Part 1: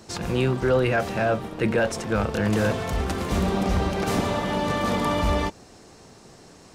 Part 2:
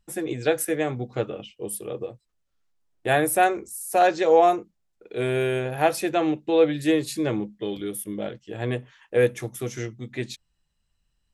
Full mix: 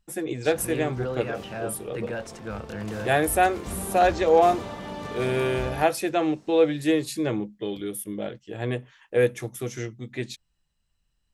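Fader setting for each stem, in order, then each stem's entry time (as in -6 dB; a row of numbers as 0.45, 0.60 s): -10.5, -1.0 dB; 0.35, 0.00 s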